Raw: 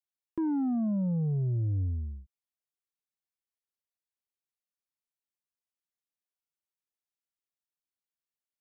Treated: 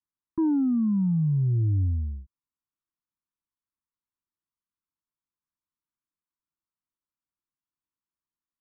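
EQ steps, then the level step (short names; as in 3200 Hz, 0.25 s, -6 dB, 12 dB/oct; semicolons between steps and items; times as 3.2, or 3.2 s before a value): Chebyshev band-stop 340–950 Hz, order 3; LPF 1300 Hz 24 dB/oct; +6.0 dB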